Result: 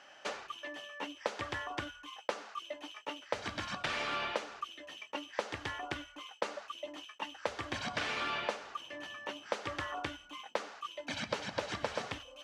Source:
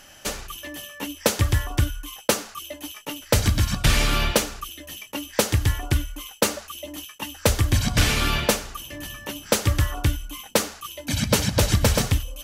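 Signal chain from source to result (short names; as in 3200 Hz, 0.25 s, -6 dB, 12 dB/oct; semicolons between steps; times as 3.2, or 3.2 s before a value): HPF 720 Hz 12 dB/oct; tilt -3 dB/oct; compressor 6:1, threshold -29 dBFS, peak gain reduction 10.5 dB; air absorption 110 m; gain -2 dB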